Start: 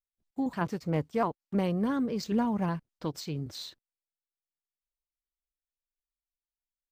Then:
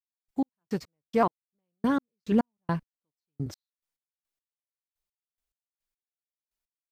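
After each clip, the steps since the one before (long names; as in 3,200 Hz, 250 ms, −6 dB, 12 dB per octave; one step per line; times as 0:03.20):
gate pattern "..x..x..x.." 106 BPM −60 dB
level +5 dB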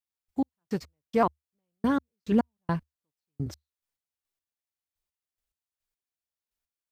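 parametric band 74 Hz +11 dB 0.45 octaves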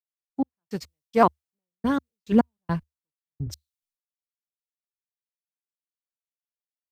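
multiband upward and downward expander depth 100%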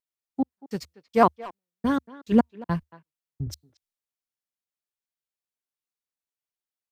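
far-end echo of a speakerphone 230 ms, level −18 dB
tape wow and flutter 25 cents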